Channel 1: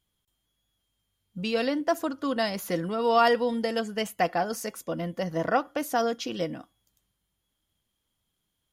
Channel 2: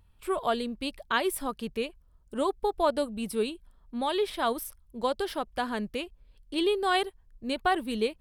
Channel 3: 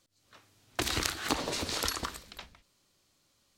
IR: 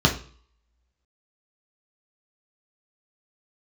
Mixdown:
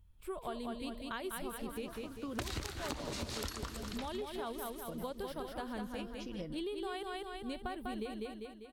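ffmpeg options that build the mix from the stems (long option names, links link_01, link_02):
-filter_complex "[0:a]acompressor=threshold=-31dB:ratio=6,volume=-10dB[link_01];[1:a]lowpass=frequency=3500:poles=1,aemphasis=mode=production:type=50fm,volume=-11.5dB,asplit=3[link_02][link_03][link_04];[link_03]volume=-4.5dB[link_05];[2:a]adelay=1600,volume=1dB,asplit=2[link_06][link_07];[link_07]volume=-14.5dB[link_08];[link_04]apad=whole_len=384772[link_09];[link_01][link_09]sidechaincompress=threshold=-57dB:ratio=3:attack=16:release=329[link_10];[link_05][link_08]amix=inputs=2:normalize=0,aecho=0:1:198|396|594|792|990|1188|1386:1|0.5|0.25|0.125|0.0625|0.0312|0.0156[link_11];[link_10][link_02][link_06][link_11]amix=inputs=4:normalize=0,lowshelf=frequency=220:gain=11.5,acompressor=threshold=-36dB:ratio=12"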